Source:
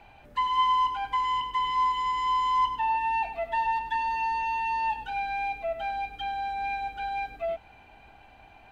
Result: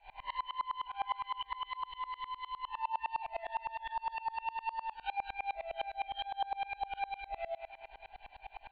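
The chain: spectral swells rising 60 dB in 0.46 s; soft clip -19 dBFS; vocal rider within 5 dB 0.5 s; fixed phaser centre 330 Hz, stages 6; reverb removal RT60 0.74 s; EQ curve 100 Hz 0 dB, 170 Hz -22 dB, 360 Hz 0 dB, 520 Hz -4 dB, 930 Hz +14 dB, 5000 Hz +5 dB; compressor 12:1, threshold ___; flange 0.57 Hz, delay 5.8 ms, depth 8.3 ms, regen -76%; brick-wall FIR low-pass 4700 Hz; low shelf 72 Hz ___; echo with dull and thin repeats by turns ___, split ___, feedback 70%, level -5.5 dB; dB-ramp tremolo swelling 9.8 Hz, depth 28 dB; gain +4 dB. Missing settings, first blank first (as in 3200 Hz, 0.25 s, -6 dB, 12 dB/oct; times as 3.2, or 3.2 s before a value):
-29 dBFS, +6.5 dB, 0.107 s, 830 Hz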